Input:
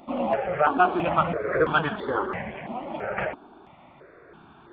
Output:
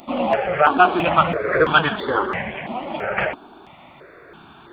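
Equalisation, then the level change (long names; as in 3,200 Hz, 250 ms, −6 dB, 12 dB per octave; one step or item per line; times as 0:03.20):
high-shelf EQ 2,600 Hz +12 dB
+4.5 dB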